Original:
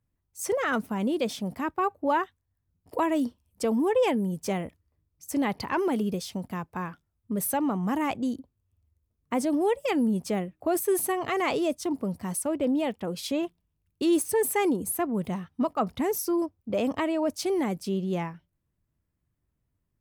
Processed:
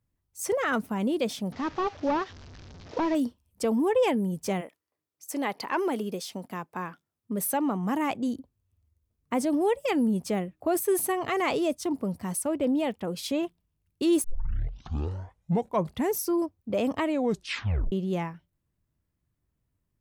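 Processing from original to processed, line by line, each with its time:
1.52–3.15 delta modulation 32 kbps, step -40.5 dBFS
4.6–8.27 HPF 460 Hz -> 120 Hz
14.24 tape start 1.85 s
17.07 tape stop 0.85 s

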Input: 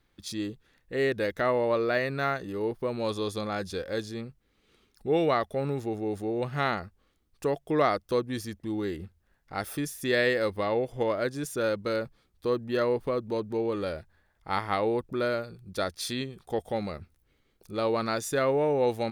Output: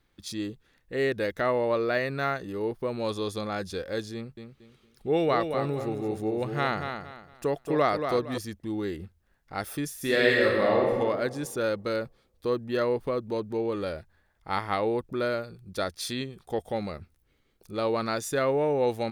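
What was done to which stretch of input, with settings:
4.14–8.38 feedback echo 0.23 s, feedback 29%, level -7 dB
9.93–10.91 reverb throw, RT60 1.6 s, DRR -2.5 dB

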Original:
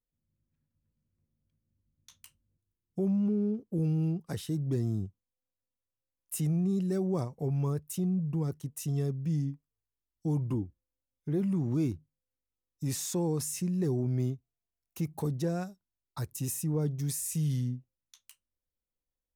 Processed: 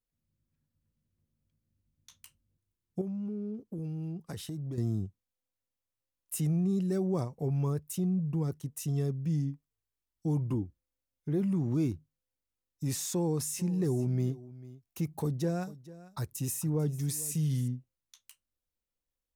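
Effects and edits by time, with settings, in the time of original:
3.01–4.78 compressor 4:1, threshold -35 dBFS
12.99–17.68 echo 0.446 s -18 dB

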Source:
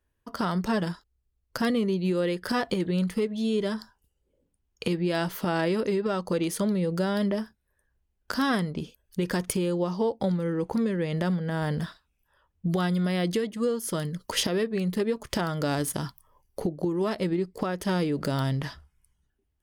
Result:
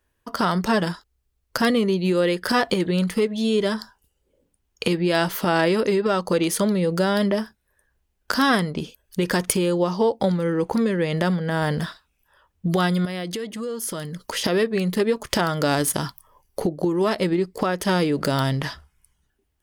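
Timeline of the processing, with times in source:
13.05–14.44 compressor 4:1, threshold -33 dBFS
whole clip: low shelf 330 Hz -6 dB; gain +8.5 dB

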